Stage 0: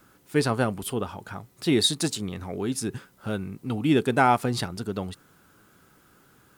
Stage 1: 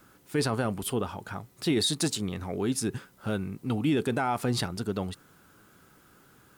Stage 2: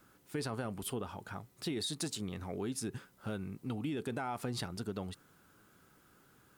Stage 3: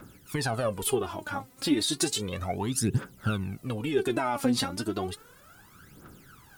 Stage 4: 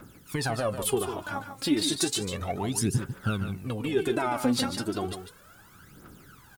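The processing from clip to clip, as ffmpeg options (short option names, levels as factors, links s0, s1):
-af "alimiter=limit=0.133:level=0:latency=1:release=18"
-af "acompressor=threshold=0.0447:ratio=6,volume=0.473"
-af "aphaser=in_gain=1:out_gain=1:delay=4:decay=0.74:speed=0.33:type=triangular,volume=2.51"
-af "aecho=1:1:147:0.355"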